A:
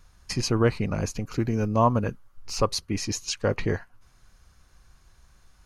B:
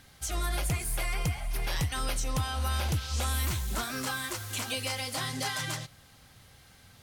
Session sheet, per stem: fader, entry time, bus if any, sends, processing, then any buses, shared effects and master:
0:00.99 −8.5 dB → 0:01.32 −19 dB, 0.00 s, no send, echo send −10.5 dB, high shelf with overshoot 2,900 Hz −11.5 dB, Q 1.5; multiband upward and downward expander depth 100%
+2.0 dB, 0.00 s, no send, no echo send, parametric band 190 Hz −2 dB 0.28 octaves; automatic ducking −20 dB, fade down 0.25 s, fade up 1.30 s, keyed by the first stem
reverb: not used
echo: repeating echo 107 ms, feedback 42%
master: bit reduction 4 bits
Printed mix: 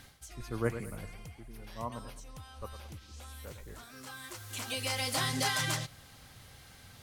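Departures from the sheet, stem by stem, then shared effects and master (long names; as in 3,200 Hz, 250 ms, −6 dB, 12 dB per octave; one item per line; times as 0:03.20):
stem A −8.5 dB → −15.5 dB
master: missing bit reduction 4 bits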